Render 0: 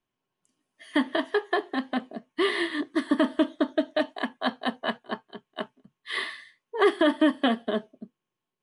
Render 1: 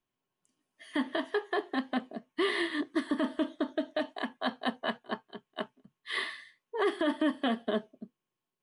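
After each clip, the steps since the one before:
brickwall limiter −16.5 dBFS, peak gain reduction 6.5 dB
level −3 dB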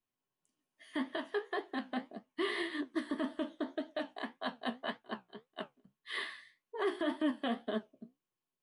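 flanger 1.8 Hz, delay 8.9 ms, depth 8.6 ms, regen +56%
level −1.5 dB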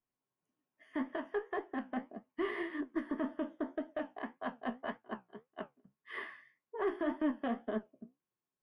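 moving average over 11 samples
harmonic generator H 2 −21 dB, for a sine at −23.5 dBFS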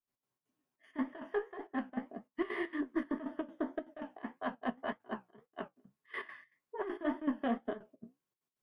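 gate pattern ".x.xx.xxxx" 198 BPM −12 dB
flanger 1.8 Hz, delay 6.7 ms, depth 2.3 ms, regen −61%
level +6 dB

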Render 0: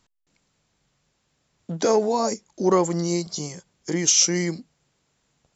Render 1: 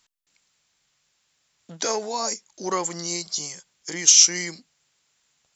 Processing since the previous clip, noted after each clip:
tilt shelving filter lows −9 dB, about 880 Hz
level −4 dB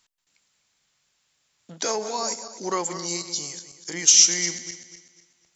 feedback delay that plays each chunk backwards 124 ms, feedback 56%, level −11 dB
level −1 dB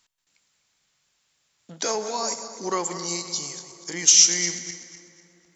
convolution reverb RT60 3.8 s, pre-delay 43 ms, DRR 13.5 dB

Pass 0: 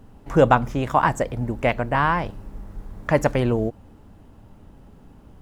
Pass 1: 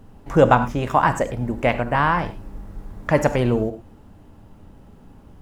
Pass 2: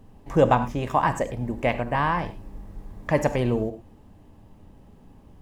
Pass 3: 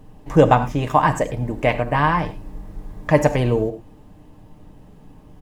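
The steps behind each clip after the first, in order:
reverb whose tail is shaped and stops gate 130 ms flat, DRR 10 dB; level +1 dB
notch filter 1,400 Hz, Q 6; level −4 dB
comb filter 6.6 ms, depth 41%; level +4.5 dB

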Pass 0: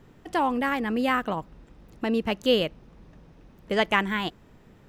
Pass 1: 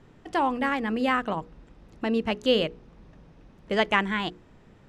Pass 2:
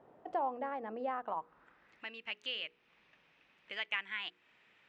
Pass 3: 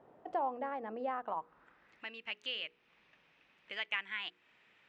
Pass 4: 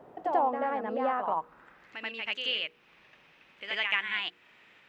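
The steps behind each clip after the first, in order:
Bessel low-pass filter 7,900 Hz, order 8; mains-hum notches 60/120/180/240/300/360/420/480 Hz
downward compressor 2 to 1, threshold −39 dBFS, peak gain reduction 12.5 dB; band-pass filter sweep 670 Hz → 2,500 Hz, 0:01.09–0:02.10; level +4 dB
no processing that can be heard
backwards echo 85 ms −5 dB; level +7.5 dB

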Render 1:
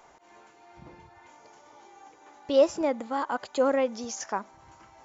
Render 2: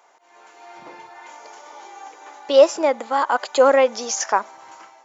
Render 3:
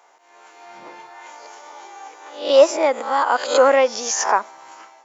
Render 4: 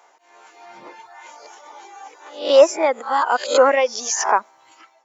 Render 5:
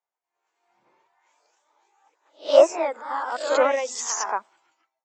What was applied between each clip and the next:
high-pass filter 480 Hz 12 dB per octave; automatic gain control gain up to 13 dB
peak hold with a rise ahead of every peak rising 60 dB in 0.45 s; high-pass filter 200 Hz 6 dB per octave
reverb reduction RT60 1.1 s; level +1 dB
delay with pitch and tempo change per echo 122 ms, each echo +1 semitone, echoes 2; multiband upward and downward expander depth 70%; level −11 dB

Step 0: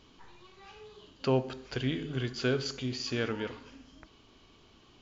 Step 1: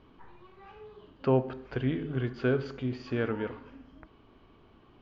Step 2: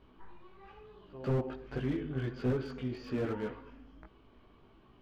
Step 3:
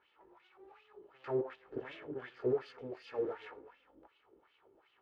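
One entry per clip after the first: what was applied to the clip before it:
low-pass filter 1,700 Hz 12 dB per octave; level +2.5 dB
echo ahead of the sound 141 ms −22.5 dB; multi-voice chorus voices 6, 0.75 Hz, delay 18 ms, depth 3.1 ms; slew-rate limiting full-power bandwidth 14 Hz
lower of the sound and its delayed copy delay 2.3 ms; LFO wah 2.7 Hz 340–3,100 Hz, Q 2.6; level +4.5 dB

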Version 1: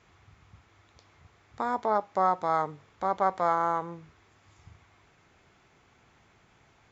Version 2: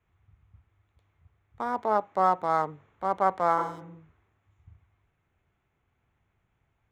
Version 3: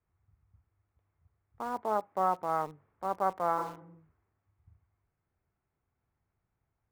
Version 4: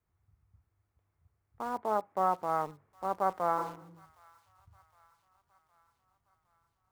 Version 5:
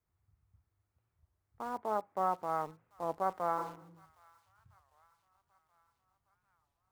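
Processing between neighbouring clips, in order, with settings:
adaptive Wiener filter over 9 samples; healed spectral selection 0:03.61–0:03.94, 300–2,900 Hz both; multiband upward and downward expander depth 40%
low-pass filter 1,700 Hz 12 dB per octave; in parallel at −8 dB: bit-depth reduction 6 bits, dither none; on the sum: level −8 dB
delay with a high-pass on its return 763 ms, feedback 58%, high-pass 2,100 Hz, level −17 dB
wow of a warped record 33 1/3 rpm, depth 250 cents; level −3.5 dB

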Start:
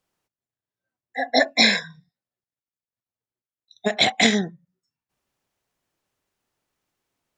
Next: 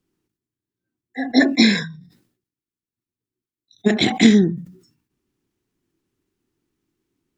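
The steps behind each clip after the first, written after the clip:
low shelf with overshoot 450 Hz +9.5 dB, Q 3
level that may fall only so fast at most 99 dB per second
level −2.5 dB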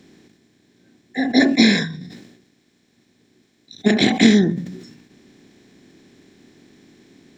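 compressor on every frequency bin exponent 0.6
level −2 dB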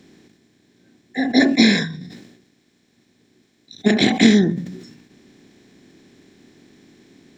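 no processing that can be heard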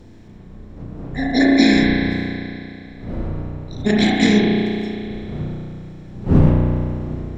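wind on the microphone 200 Hz −24 dBFS
spring reverb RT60 2.6 s, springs 33 ms, chirp 60 ms, DRR −2.5 dB
level −3.5 dB

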